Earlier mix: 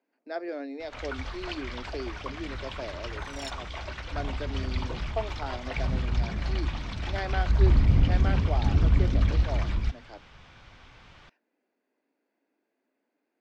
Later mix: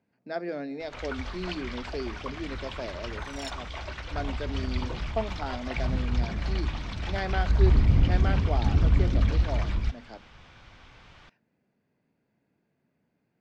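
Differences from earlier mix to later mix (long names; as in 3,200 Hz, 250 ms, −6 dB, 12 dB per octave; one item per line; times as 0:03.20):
speech: remove Chebyshev high-pass filter 270 Hz, order 4
reverb: on, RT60 1.9 s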